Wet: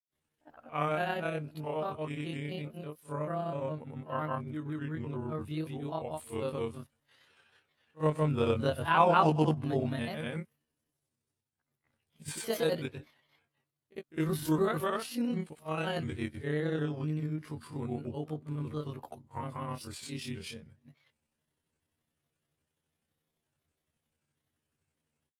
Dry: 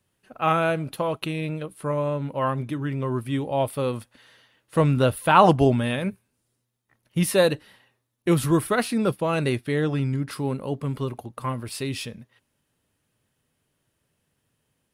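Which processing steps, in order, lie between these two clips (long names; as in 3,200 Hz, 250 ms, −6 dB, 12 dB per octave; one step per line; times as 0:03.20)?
granular cloud, grains 20 per second, pitch spread up and down by 3 semitones
echo ahead of the sound 33 ms −21 dB
time stretch by overlap-add 1.7×, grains 63 ms
level −7.5 dB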